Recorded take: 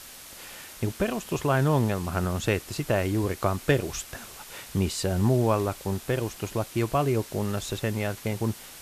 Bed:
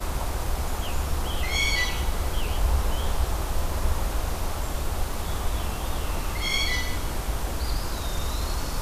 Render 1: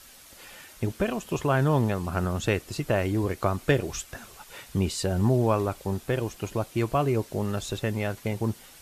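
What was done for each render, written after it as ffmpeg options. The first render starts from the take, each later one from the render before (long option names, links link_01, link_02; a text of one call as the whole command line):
ffmpeg -i in.wav -af "afftdn=noise_reduction=7:noise_floor=-45" out.wav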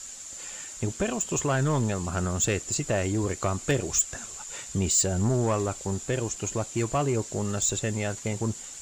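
ffmpeg -i in.wav -af "lowpass=frequency=7200:width_type=q:width=14,asoftclip=type=tanh:threshold=-17dB" out.wav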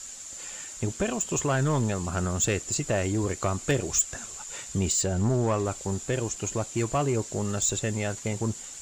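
ffmpeg -i in.wav -filter_complex "[0:a]asettb=1/sr,asplit=3[link_01][link_02][link_03];[link_01]atrim=end=4.924[link_04];[link_02]atrim=start=4.92:end=5.66,asetpts=PTS-STARTPTS,afade=type=in:duration=0.004:curve=qsin,afade=type=out:start_time=0.736:duration=0.004:curve=qsin,highshelf=frequency=7300:gain=-7.5[link_05];[link_03]atrim=start=5.656[link_06];[link_04][link_05]acrossfade=duration=0.004:curve1=hsin:curve2=qsin[link_07];[link_07][link_06]acrossfade=duration=0.004:curve1=qsin:curve2=hsin" out.wav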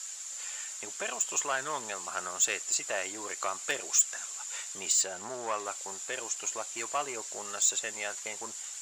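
ffmpeg -i in.wav -af "highpass=880" out.wav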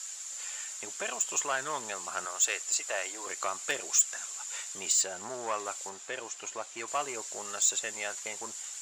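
ffmpeg -i in.wav -filter_complex "[0:a]asettb=1/sr,asplit=3[link_01][link_02][link_03];[link_01]atrim=end=2.254[link_04];[link_02]atrim=start=2.25:end=3.27,asetpts=PTS-STARTPTS,afade=type=in:duration=0.004:curve=qsin,afade=type=out:start_time=1.016:duration=0.004:curve=qsin,highpass=420[link_05];[link_03]atrim=start=3.266[link_06];[link_04][link_05]acrossfade=duration=0.004:curve1=hsin:curve2=qsin[link_07];[link_07][link_06]acrossfade=duration=0.004:curve1=qsin:curve2=hsin,asettb=1/sr,asplit=3[link_08][link_09][link_10];[link_08]atrim=end=5.894[link_11];[link_09]atrim=start=5.89:end=6.88,asetpts=PTS-STARTPTS,afade=type=in:duration=0.004:curve=qsin,afade=type=out:start_time=0.986:duration=0.004:curve=qsin,highshelf=frequency=6200:gain=-12[link_12];[link_10]atrim=start=6.876[link_13];[link_11][link_12]acrossfade=duration=0.004:curve1=hsin:curve2=qsin[link_14];[link_14][link_13]acrossfade=duration=0.004:curve1=qsin:curve2=hsin" out.wav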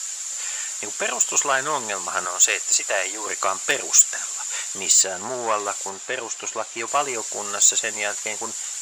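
ffmpeg -i in.wav -af "volume=10.5dB" out.wav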